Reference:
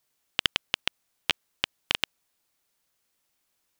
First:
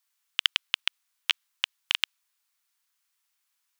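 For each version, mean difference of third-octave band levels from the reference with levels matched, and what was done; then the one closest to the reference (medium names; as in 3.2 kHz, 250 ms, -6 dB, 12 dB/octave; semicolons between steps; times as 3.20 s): 9.0 dB: high-pass 970 Hz 24 dB/octave; dynamic bell 3.2 kHz, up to +4 dB, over -39 dBFS, Q 1.3; trim -1.5 dB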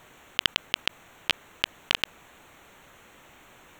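1.5 dB: local Wiener filter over 9 samples; level flattener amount 50%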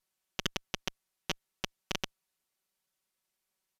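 6.0 dB: comb filter that takes the minimum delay 5.3 ms; resampled via 32 kHz; trim -6 dB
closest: second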